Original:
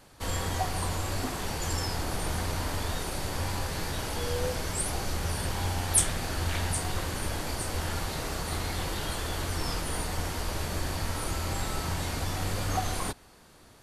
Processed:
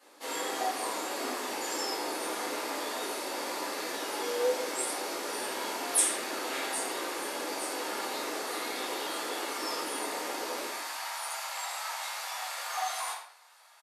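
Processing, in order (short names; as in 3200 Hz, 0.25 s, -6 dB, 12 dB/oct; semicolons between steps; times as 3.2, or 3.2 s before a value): steep high-pass 280 Hz 36 dB/oct, from 10.64 s 710 Hz; echo 79 ms -11.5 dB; shoebox room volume 81 m³, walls mixed, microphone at 2.1 m; gain -9 dB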